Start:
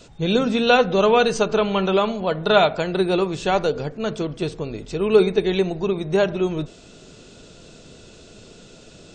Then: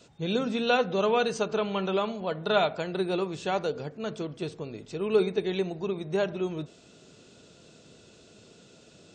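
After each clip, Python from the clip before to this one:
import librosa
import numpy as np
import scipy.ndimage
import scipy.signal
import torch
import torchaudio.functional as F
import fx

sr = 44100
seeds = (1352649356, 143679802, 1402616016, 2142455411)

y = scipy.signal.sosfilt(scipy.signal.butter(2, 91.0, 'highpass', fs=sr, output='sos'), x)
y = F.gain(torch.from_numpy(y), -8.5).numpy()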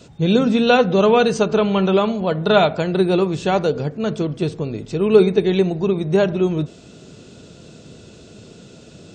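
y = fx.low_shelf(x, sr, hz=310.0, db=9.0)
y = F.gain(torch.from_numpy(y), 8.0).numpy()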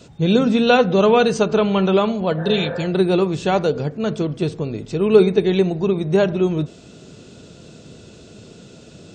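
y = fx.spec_repair(x, sr, seeds[0], start_s=2.41, length_s=0.41, low_hz=450.0, high_hz=1900.0, source='after')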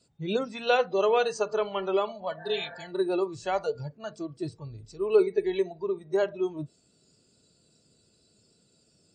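y = fx.noise_reduce_blind(x, sr, reduce_db=17)
y = F.gain(torch.from_numpy(y), -8.5).numpy()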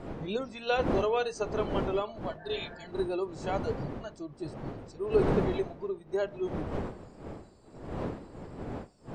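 y = fx.dmg_wind(x, sr, seeds[1], corner_hz=450.0, level_db=-32.0)
y = F.gain(torch.from_numpy(y), -5.0).numpy()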